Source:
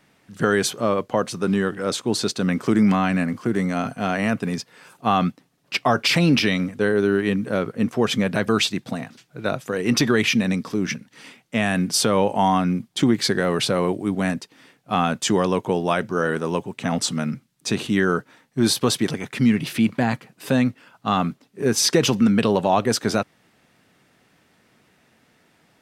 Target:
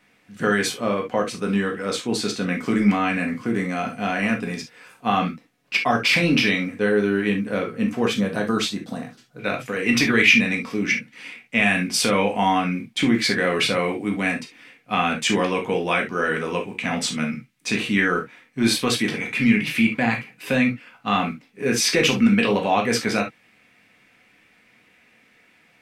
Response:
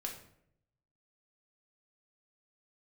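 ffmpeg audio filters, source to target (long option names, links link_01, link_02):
-filter_complex "[0:a]asetnsamples=nb_out_samples=441:pad=0,asendcmd='8.11 equalizer g -4.5;9.39 equalizer g 13',equalizer=frequency=2300:width_type=o:width=0.72:gain=7[link_01];[1:a]atrim=start_sample=2205,atrim=end_sample=3528[link_02];[link_01][link_02]afir=irnorm=-1:irlink=0,volume=-1dB"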